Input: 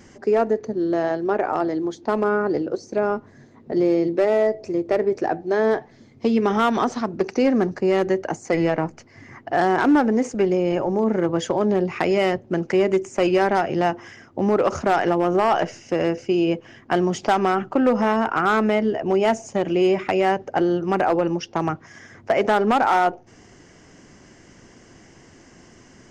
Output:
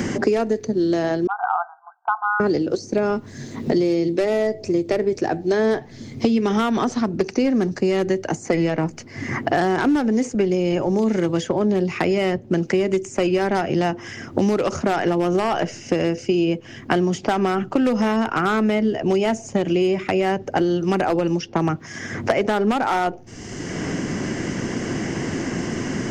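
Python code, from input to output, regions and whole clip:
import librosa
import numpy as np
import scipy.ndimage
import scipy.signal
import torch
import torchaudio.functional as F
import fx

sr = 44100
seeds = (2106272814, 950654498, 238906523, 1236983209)

y = fx.chain(x, sr, fx.brickwall_bandpass(low_hz=690.0, high_hz=1600.0),
    fx.band_widen(depth_pct=100), at=(1.27, 2.4))
y = fx.peak_eq(y, sr, hz=920.0, db=-8.5, octaves=2.7)
y = fx.band_squash(y, sr, depth_pct=100)
y = F.gain(torch.from_numpy(y), 4.5).numpy()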